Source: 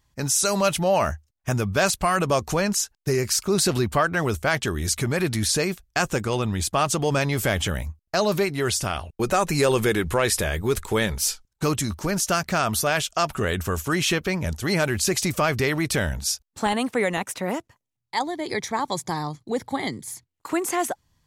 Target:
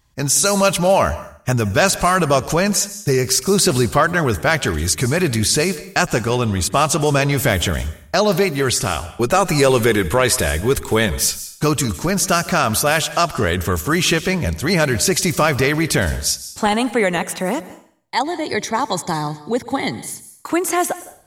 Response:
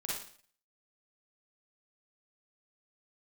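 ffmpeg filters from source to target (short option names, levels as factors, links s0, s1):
-filter_complex "[0:a]asplit=2[s0][s1];[1:a]atrim=start_sample=2205,highshelf=f=8600:g=9.5,adelay=110[s2];[s1][s2]afir=irnorm=-1:irlink=0,volume=0.126[s3];[s0][s3]amix=inputs=2:normalize=0,volume=2"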